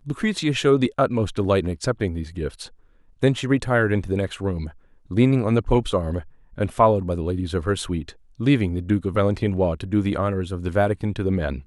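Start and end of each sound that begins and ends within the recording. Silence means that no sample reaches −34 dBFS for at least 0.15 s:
0:03.22–0:04.70
0:05.11–0:06.23
0:06.58–0:08.10

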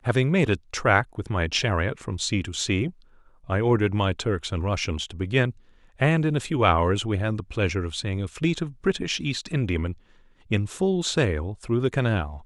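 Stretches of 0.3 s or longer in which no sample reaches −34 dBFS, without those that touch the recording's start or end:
0:02.90–0:03.49
0:05.51–0:06.01
0:09.93–0:10.51

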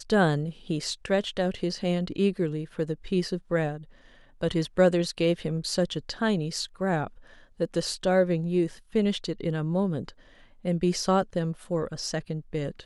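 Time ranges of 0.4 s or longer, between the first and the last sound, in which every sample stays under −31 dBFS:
0:03.76–0:04.41
0:07.07–0:07.60
0:10.09–0:10.65

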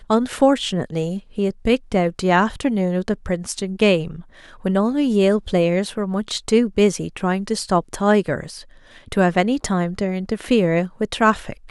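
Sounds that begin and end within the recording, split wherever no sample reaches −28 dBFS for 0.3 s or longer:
0:04.65–0:08.59

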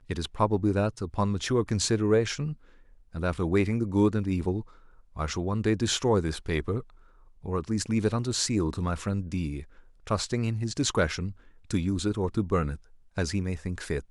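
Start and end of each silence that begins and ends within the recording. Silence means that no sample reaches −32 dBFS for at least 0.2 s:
0:02.53–0:03.15
0:04.61–0:05.17
0:06.80–0:07.46
0:09.60–0:10.07
0:11.30–0:11.71
0:12.75–0:13.18

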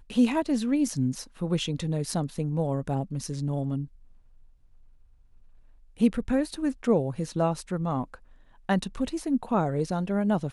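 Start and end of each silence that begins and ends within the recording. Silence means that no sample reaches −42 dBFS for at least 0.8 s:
0:03.86–0:05.99

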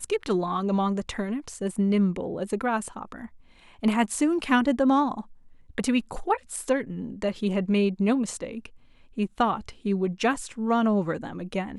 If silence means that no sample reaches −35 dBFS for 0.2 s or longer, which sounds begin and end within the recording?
0:03.83–0:05.21
0:05.78–0:08.66

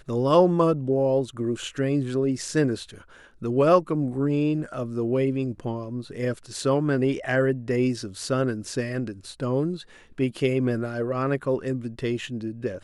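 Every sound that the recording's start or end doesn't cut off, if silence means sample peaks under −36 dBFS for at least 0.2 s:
0:03.42–0:09.82

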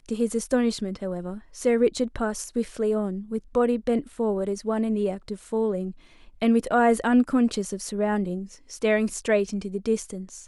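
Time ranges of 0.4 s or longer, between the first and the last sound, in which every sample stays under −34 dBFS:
0:05.91–0:06.42

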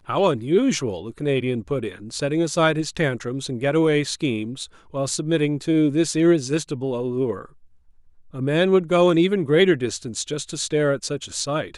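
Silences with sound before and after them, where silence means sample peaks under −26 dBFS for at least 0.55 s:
0:07.41–0:08.36

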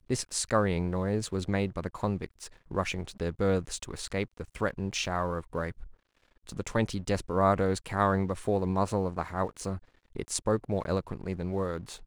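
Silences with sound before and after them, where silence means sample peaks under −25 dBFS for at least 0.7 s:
0:05.68–0:06.60

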